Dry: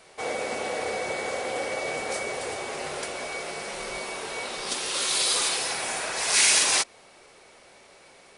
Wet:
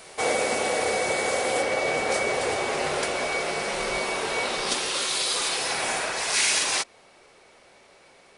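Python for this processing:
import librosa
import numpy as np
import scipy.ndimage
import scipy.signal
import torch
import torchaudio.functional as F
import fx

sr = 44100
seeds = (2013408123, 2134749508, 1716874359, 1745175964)

y = fx.high_shelf(x, sr, hz=7100.0, db=fx.steps((0.0, 7.0), (1.61, -6.0)))
y = fx.rider(y, sr, range_db=4, speed_s=0.5)
y = y * librosa.db_to_amplitude(3.0)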